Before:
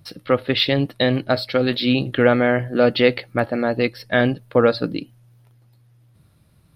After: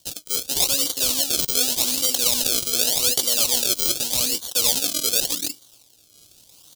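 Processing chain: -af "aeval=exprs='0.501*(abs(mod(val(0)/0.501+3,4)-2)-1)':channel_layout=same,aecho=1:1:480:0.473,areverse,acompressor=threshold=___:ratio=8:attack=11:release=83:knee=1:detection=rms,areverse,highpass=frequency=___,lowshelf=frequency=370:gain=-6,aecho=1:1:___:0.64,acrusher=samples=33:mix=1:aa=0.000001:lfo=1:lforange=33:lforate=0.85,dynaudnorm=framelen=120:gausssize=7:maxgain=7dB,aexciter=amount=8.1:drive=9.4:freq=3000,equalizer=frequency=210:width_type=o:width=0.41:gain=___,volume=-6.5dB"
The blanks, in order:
-31dB, 150, 3.7, -6.5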